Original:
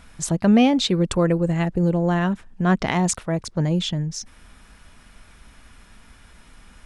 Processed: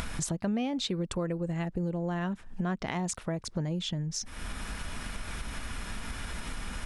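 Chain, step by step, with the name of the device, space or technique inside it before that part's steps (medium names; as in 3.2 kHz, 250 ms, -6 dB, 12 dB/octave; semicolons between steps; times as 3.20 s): upward and downward compression (upward compressor, threshold -23 dBFS; compression 4:1, threshold -31 dBFS, peak gain reduction 16 dB)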